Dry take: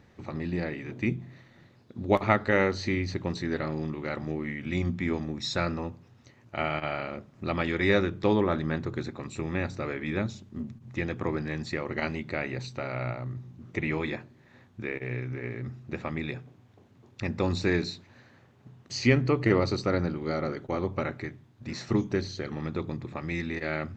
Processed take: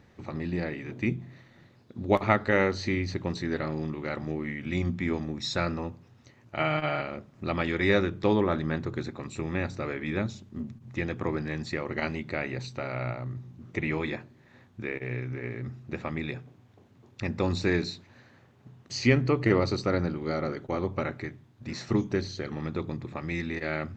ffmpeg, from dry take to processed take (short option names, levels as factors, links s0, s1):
-filter_complex "[0:a]asettb=1/sr,asplit=3[s0][s1][s2];[s0]atrim=end=6.594[s3];[s1]atrim=start=6.59:end=7.02,asetpts=PTS-STARTPTS,afade=t=in:d=0.004:c=qsin,afade=t=out:st=0.426:d=0.004:c=qsin,aecho=1:1:6.5:0.87,atrim=end_sample=18963[s4];[s2]atrim=start=7.016[s5];[s3][s4]acrossfade=d=0.004:c1=hsin:c2=qsin[s6];[s6][s5]acrossfade=d=0.004:c1=qsin:c2=hsin"